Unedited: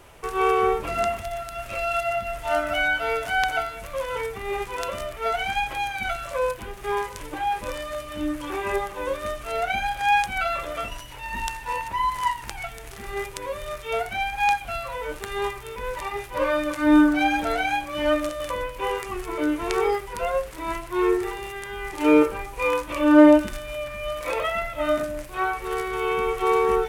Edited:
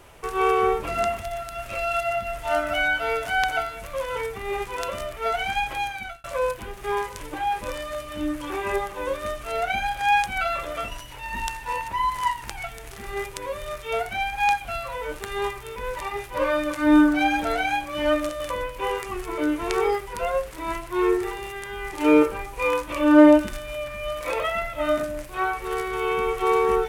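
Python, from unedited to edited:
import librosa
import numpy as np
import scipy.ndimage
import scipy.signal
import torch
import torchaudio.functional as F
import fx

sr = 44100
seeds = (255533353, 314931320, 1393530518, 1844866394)

y = fx.edit(x, sr, fx.fade_out_span(start_s=5.83, length_s=0.41), tone=tone)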